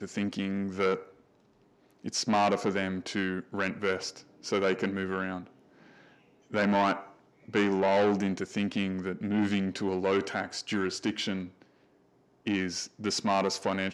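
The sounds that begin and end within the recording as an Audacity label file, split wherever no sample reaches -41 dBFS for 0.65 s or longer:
2.040000	5.470000	sound
6.510000	11.620000	sound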